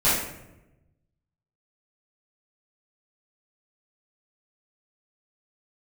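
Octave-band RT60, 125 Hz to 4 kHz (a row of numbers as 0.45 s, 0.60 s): 1.6 s, 1.2 s, 1.1 s, 0.80 s, 0.75 s, 0.55 s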